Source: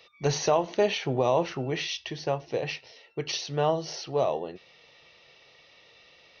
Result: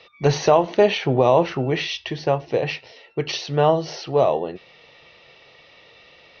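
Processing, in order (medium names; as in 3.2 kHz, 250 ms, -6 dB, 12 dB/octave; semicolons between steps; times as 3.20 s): distance through air 140 m; trim +8.5 dB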